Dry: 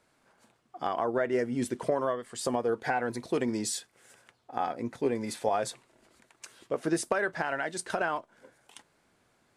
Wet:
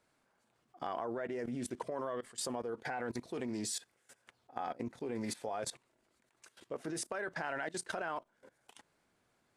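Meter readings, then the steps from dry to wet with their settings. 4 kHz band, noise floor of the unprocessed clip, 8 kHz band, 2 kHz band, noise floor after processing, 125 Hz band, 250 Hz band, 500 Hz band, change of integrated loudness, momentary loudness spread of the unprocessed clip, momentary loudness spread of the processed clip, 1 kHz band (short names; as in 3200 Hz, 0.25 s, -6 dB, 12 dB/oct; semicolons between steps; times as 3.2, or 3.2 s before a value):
-4.5 dB, -70 dBFS, -4.5 dB, -8.5 dB, -77 dBFS, -7.5 dB, -8.5 dB, -10.0 dB, -8.5 dB, 8 LU, 4 LU, -9.0 dB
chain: level quantiser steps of 19 dB; Doppler distortion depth 0.12 ms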